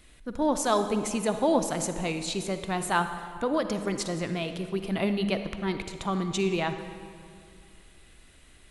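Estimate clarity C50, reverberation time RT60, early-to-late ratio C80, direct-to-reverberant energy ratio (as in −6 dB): 8.5 dB, 2.3 s, 9.5 dB, 8.0 dB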